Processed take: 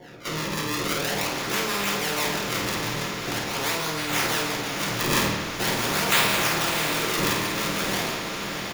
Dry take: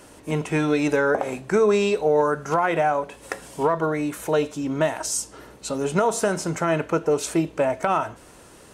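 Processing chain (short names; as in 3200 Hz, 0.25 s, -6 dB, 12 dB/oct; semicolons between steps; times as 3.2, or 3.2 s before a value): spectral dilation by 0.12 s; pre-emphasis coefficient 0.9; gate -43 dBFS, range -14 dB; bell 2200 Hz -11.5 dB 1.4 oct; decimation with a swept rate 34×, swing 160% 0.44 Hz; harmonic tremolo 6.1 Hz, depth 70%, crossover 750 Hz; doubler 50 ms -6.5 dB; diffused feedback echo 0.669 s, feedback 50%, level -11 dB; reverb RT60 1.0 s, pre-delay 3 ms, DRR -2.5 dB; spectral compressor 2:1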